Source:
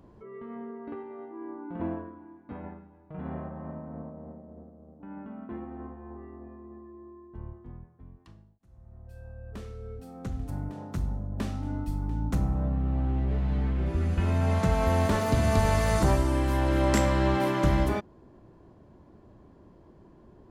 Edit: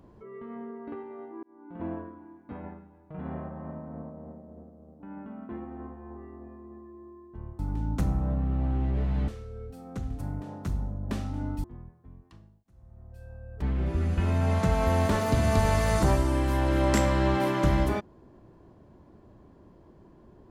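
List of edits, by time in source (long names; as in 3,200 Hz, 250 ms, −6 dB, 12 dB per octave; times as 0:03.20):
0:01.43–0:02.01: fade in
0:07.59–0:09.57: swap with 0:11.93–0:13.62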